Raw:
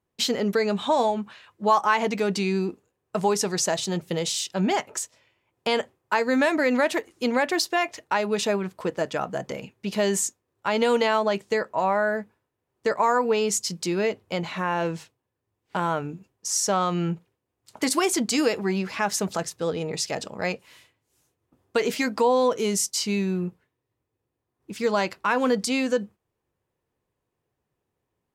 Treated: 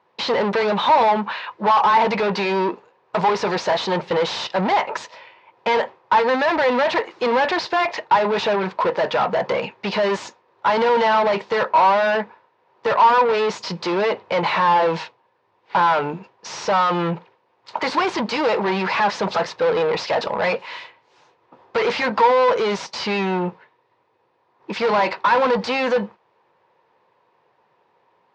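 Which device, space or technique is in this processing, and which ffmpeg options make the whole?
overdrive pedal into a guitar cabinet: -filter_complex "[0:a]asplit=2[a][b];[b]highpass=f=720:p=1,volume=33dB,asoftclip=type=tanh:threshold=-7.5dB[c];[a][c]amix=inputs=2:normalize=0,lowpass=f=4.1k:p=1,volume=-6dB,highpass=110,equalizer=f=280:t=q:w=4:g=-6,equalizer=f=520:t=q:w=4:g=4,equalizer=f=930:t=q:w=4:g=10,equalizer=f=3.1k:t=q:w=4:g=-3,lowpass=f=4.5k:w=0.5412,lowpass=f=4.5k:w=1.3066,volume=-6dB"

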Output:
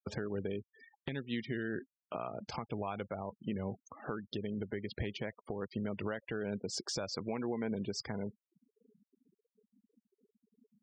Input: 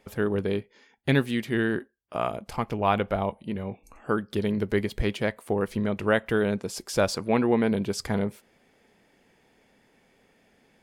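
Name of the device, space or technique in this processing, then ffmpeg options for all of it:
broadcast voice chain: -af "highpass=f=78:w=0.5412,highpass=f=78:w=1.3066,deesser=0.6,acompressor=threshold=-35dB:ratio=5,equalizer=f=5.5k:t=o:w=1.3:g=6,alimiter=level_in=4.5dB:limit=-24dB:level=0:latency=1:release=271,volume=-4.5dB,lowpass=6.9k,afftfilt=real='re*gte(hypot(re,im),0.00501)':imag='im*gte(hypot(re,im),0.00501)':win_size=1024:overlap=0.75,deesser=0.85,volume=3dB"

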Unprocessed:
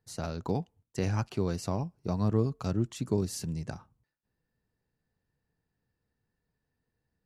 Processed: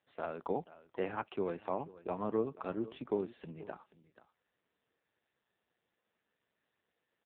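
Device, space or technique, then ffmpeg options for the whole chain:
satellite phone: -af "highpass=380,lowpass=3.2k,aecho=1:1:484:0.133,volume=1dB" -ar 8000 -c:a libopencore_amrnb -b:a 5900

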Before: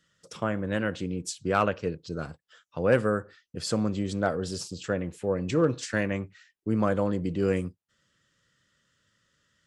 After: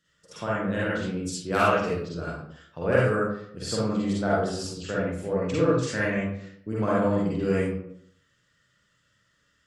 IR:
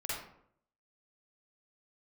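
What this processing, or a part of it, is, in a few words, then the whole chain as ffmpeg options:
bathroom: -filter_complex "[0:a]asettb=1/sr,asplit=3[a][b][c];[a]atrim=end=1.524[d];[b]atrim=start=1.52:end=2.01,asetpts=PTS-STARTPTS,afade=t=in:d=0.004:c=qsin,afade=t=out:st=0.486:d=0.004:c=qsin,aemphasis=mode=production:type=75kf[e];[c]atrim=start=2.006[f];[d][e]acrossfade=d=0.004:c1=hsin:c2=qsin[g];[g][f]acrossfade=d=0.004:c1=qsin:c2=hsin[h];[1:a]atrim=start_sample=2205[i];[h][i]afir=irnorm=-1:irlink=0"

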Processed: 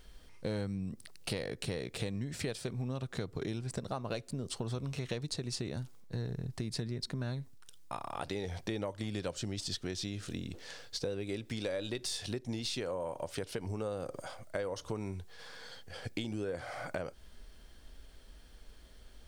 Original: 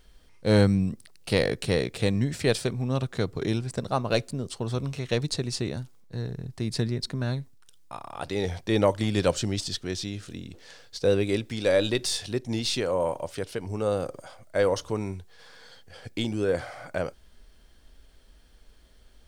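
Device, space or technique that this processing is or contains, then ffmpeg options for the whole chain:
serial compression, leveller first: -af "acompressor=threshold=-32dB:ratio=1.5,acompressor=threshold=-35dB:ratio=6,volume=1dB"

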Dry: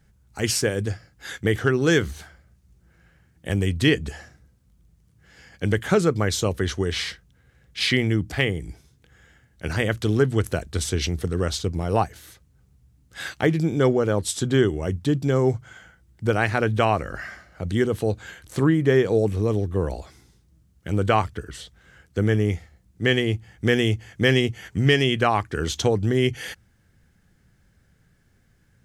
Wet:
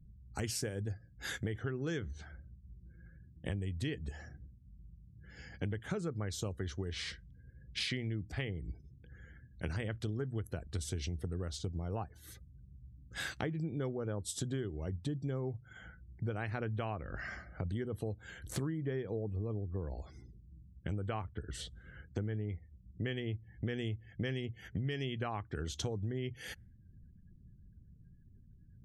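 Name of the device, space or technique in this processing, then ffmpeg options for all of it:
ASMR close-microphone chain: -filter_complex "[0:a]lowshelf=f=210:g=8,acompressor=threshold=-33dB:ratio=5,highshelf=f=7.4k:g=3.5,asettb=1/sr,asplit=3[a][b][c];[a]atrim=end=1.714[d];[b]atrim=start=1.71:end=3.54,asetpts=PTS-STARTPTS,afade=t=in:d=0.004:c=qsin,afade=t=out:st=1.826:d=0.004:c=qsin,lowpass=8.1k[e];[c]atrim=start=3.536[f];[d][e]acrossfade=d=0.004:c1=hsin:c2=qsin[g];[g][f]acrossfade=d=0.004:c1=qsin:c2=hsin,afftdn=nr=35:nf=-56,volume=-3.5dB"

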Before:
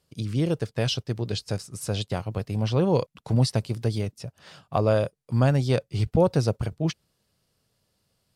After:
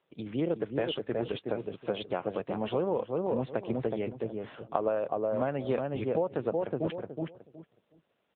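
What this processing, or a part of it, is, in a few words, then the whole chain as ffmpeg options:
voicemail: -filter_complex "[0:a]highpass=330,lowpass=2.7k,asplit=2[a][b];[b]adelay=369,lowpass=f=990:p=1,volume=-4dB,asplit=2[c][d];[d]adelay=369,lowpass=f=990:p=1,volume=0.22,asplit=2[e][f];[f]adelay=369,lowpass=f=990:p=1,volume=0.22[g];[a][c][e][g]amix=inputs=4:normalize=0,acompressor=threshold=-28dB:ratio=6,volume=3dB" -ar 8000 -c:a libopencore_amrnb -b:a 7950

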